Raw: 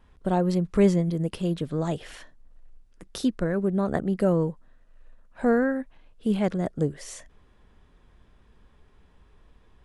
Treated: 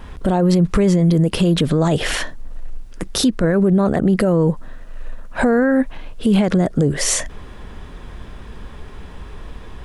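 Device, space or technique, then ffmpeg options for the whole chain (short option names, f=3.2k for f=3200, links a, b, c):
loud club master: -af "acompressor=threshold=-28dB:ratio=2,asoftclip=type=hard:threshold=-17dB,alimiter=level_in=29dB:limit=-1dB:release=50:level=0:latency=1,volume=-6.5dB"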